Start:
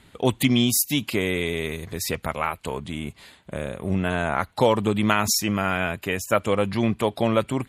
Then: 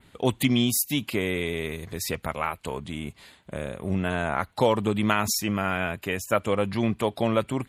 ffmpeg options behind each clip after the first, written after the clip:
ffmpeg -i in.wav -af "adynamicequalizer=threshold=0.00891:dfrequency=5800:dqfactor=1.1:tfrequency=5800:tqfactor=1.1:attack=5:release=100:ratio=0.375:range=2:mode=cutabove:tftype=bell,volume=-2.5dB" out.wav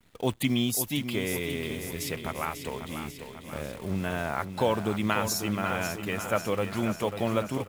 ffmpeg -i in.wav -filter_complex "[0:a]acrusher=bits=8:dc=4:mix=0:aa=0.000001,asplit=2[link_01][link_02];[link_02]aecho=0:1:543|1086|1629|2172|2715|3258|3801:0.355|0.213|0.128|0.0766|0.046|0.0276|0.0166[link_03];[link_01][link_03]amix=inputs=2:normalize=0,volume=-4dB" out.wav

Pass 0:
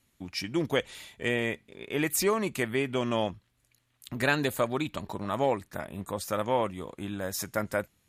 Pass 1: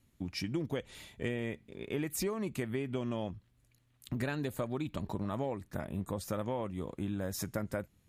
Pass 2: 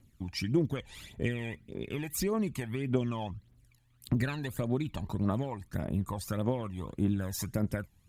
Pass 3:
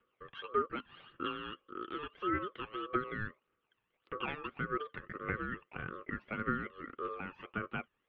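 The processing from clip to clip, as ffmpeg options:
ffmpeg -i in.wav -af "lowshelf=frequency=430:gain=11,acompressor=threshold=-26dB:ratio=6,volume=-5.5dB" out.wav
ffmpeg -i in.wav -af "aphaser=in_gain=1:out_gain=1:delay=1.3:decay=0.64:speed=1.7:type=triangular" out.wav
ffmpeg -i in.wav -af "highpass=frequency=350:width_type=q:width=0.5412,highpass=frequency=350:width_type=q:width=1.307,lowpass=frequency=2200:width_type=q:width=0.5176,lowpass=frequency=2200:width_type=q:width=0.7071,lowpass=frequency=2200:width_type=q:width=1.932,afreqshift=68,aeval=exprs='val(0)*sin(2*PI*820*n/s)':channel_layout=same,volume=3dB" out.wav

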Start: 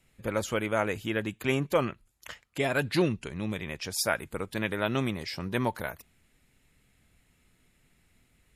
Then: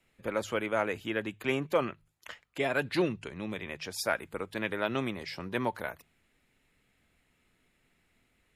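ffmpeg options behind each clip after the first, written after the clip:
ffmpeg -i in.wav -filter_complex "[0:a]bandreject=frequency=51.74:width_type=h:width=4,bandreject=frequency=103.48:width_type=h:width=4,bandreject=frequency=155.22:width_type=h:width=4,acrossover=split=240|4100[link_01][link_02][link_03];[link_02]acontrast=74[link_04];[link_01][link_04][link_03]amix=inputs=3:normalize=0,volume=-8dB" out.wav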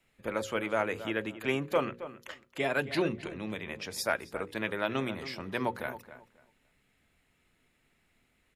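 ffmpeg -i in.wav -filter_complex "[0:a]bandreject=frequency=60:width_type=h:width=6,bandreject=frequency=120:width_type=h:width=6,bandreject=frequency=180:width_type=h:width=6,bandreject=frequency=240:width_type=h:width=6,bandreject=frequency=300:width_type=h:width=6,bandreject=frequency=360:width_type=h:width=6,bandreject=frequency=420:width_type=h:width=6,bandreject=frequency=480:width_type=h:width=6,bandreject=frequency=540:width_type=h:width=6,asplit=2[link_01][link_02];[link_02]adelay=270,lowpass=frequency=2500:poles=1,volume=-13dB,asplit=2[link_03][link_04];[link_04]adelay=270,lowpass=frequency=2500:poles=1,volume=0.22,asplit=2[link_05][link_06];[link_06]adelay=270,lowpass=frequency=2500:poles=1,volume=0.22[link_07];[link_01][link_03][link_05][link_07]amix=inputs=4:normalize=0" out.wav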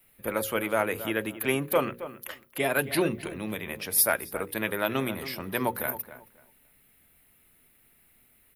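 ffmpeg -i in.wav -af "aexciter=amount=13:drive=4.3:freq=9900,volume=3.5dB" out.wav

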